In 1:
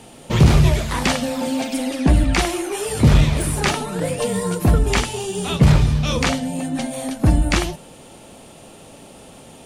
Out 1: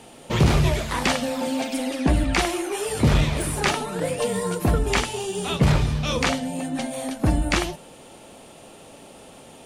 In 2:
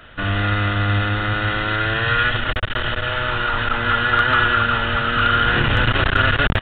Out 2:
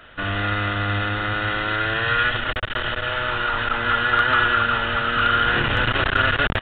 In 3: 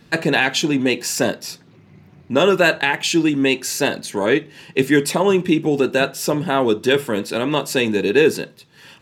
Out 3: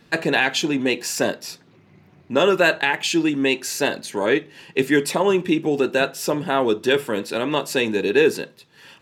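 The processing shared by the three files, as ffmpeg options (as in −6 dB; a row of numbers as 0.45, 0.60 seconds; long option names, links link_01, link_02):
-af "bass=frequency=250:gain=-5,treble=frequency=4000:gain=-2,volume=-1.5dB"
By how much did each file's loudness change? −4.5, −2.0, −2.5 LU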